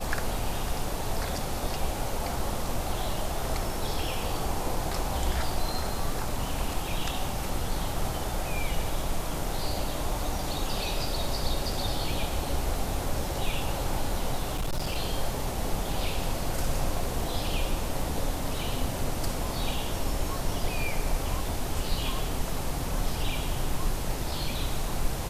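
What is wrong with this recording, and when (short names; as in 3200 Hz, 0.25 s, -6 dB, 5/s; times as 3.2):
14.53–14.98 clipped -24.5 dBFS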